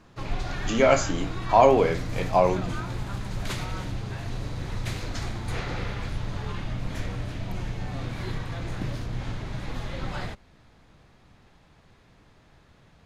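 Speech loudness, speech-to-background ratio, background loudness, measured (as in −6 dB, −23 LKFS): −22.5 LKFS, 11.0 dB, −33.5 LKFS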